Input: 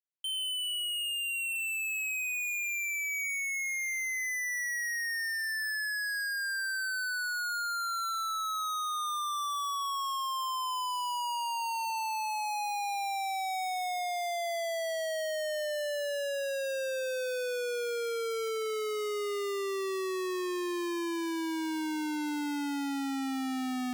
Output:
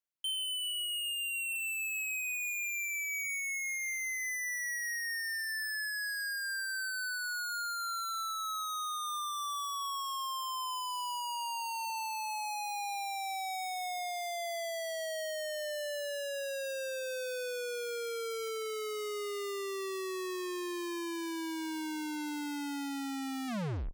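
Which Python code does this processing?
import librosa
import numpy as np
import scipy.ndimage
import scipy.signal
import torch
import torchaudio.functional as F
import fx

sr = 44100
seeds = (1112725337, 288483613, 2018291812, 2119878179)

y = fx.tape_stop_end(x, sr, length_s=0.46)
y = fx.dereverb_blind(y, sr, rt60_s=1.1)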